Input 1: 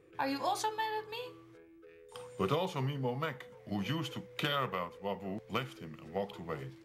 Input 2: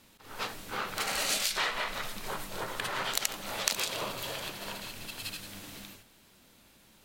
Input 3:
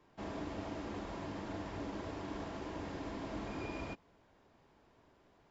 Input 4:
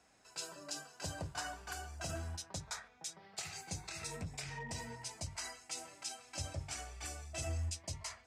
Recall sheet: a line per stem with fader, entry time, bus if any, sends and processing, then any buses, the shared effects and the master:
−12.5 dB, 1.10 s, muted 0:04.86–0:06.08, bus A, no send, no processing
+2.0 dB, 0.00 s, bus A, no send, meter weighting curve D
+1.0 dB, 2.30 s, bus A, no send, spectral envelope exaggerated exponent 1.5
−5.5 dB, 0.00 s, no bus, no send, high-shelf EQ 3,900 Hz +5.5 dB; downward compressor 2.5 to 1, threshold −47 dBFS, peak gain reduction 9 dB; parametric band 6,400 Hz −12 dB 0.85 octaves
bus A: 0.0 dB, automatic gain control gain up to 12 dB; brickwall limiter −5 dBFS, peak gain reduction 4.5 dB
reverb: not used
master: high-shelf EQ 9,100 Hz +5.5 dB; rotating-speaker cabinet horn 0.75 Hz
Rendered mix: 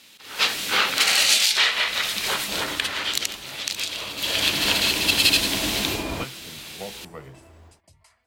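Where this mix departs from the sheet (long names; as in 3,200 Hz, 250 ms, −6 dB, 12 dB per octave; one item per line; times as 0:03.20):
stem 1: entry 1.10 s → 0.65 s
stem 3: missing spectral envelope exaggerated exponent 1.5
master: missing rotating-speaker cabinet horn 0.75 Hz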